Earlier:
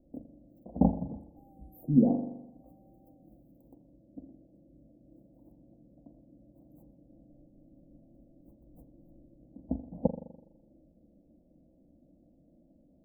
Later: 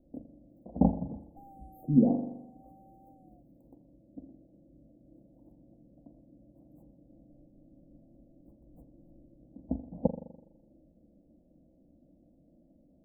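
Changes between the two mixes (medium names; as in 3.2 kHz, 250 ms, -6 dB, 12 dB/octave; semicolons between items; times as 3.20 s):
second sound +10.5 dB; master: add treble shelf 11 kHz -11 dB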